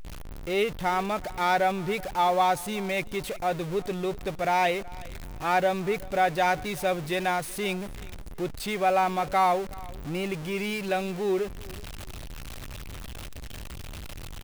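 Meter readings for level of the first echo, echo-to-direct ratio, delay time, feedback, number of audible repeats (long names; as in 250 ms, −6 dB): −21.5 dB, −21.0 dB, 374 ms, 25%, 2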